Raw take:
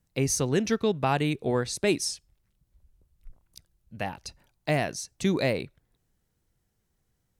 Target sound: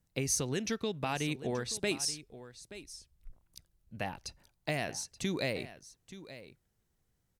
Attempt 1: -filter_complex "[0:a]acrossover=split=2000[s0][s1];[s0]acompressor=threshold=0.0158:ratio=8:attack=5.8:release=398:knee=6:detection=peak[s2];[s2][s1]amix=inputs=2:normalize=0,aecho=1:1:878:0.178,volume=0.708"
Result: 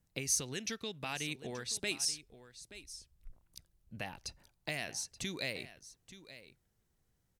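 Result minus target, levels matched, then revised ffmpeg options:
compression: peak gain reduction +9 dB
-filter_complex "[0:a]acrossover=split=2000[s0][s1];[s0]acompressor=threshold=0.0501:ratio=8:attack=5.8:release=398:knee=6:detection=peak[s2];[s2][s1]amix=inputs=2:normalize=0,aecho=1:1:878:0.178,volume=0.708"

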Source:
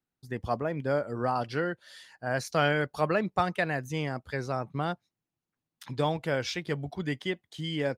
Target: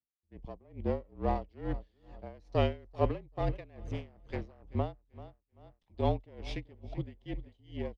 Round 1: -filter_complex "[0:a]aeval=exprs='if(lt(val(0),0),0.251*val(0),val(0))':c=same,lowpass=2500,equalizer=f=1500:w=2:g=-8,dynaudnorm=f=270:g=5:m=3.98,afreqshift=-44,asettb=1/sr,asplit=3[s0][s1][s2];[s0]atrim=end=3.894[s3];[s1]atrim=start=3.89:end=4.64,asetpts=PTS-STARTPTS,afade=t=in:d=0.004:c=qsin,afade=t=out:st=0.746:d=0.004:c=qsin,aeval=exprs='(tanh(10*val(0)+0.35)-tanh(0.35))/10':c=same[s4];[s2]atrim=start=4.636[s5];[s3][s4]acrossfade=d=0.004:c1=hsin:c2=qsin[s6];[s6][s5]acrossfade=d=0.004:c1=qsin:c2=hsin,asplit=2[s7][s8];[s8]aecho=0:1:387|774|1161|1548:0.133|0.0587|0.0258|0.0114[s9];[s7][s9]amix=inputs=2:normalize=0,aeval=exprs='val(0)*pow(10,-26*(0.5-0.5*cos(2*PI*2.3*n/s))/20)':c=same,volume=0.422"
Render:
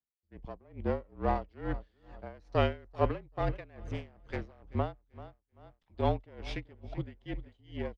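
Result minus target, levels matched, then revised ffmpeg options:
2 kHz band +4.0 dB
-filter_complex "[0:a]aeval=exprs='if(lt(val(0),0),0.251*val(0),val(0))':c=same,lowpass=2500,equalizer=f=1500:w=2:g=-18,dynaudnorm=f=270:g=5:m=3.98,afreqshift=-44,asettb=1/sr,asplit=3[s0][s1][s2];[s0]atrim=end=3.894[s3];[s1]atrim=start=3.89:end=4.64,asetpts=PTS-STARTPTS,afade=t=in:d=0.004:c=qsin,afade=t=out:st=0.746:d=0.004:c=qsin,aeval=exprs='(tanh(10*val(0)+0.35)-tanh(0.35))/10':c=same[s4];[s2]atrim=start=4.636[s5];[s3][s4]acrossfade=d=0.004:c1=hsin:c2=qsin[s6];[s6][s5]acrossfade=d=0.004:c1=qsin:c2=hsin,asplit=2[s7][s8];[s8]aecho=0:1:387|774|1161|1548:0.133|0.0587|0.0258|0.0114[s9];[s7][s9]amix=inputs=2:normalize=0,aeval=exprs='val(0)*pow(10,-26*(0.5-0.5*cos(2*PI*2.3*n/s))/20)':c=same,volume=0.422"

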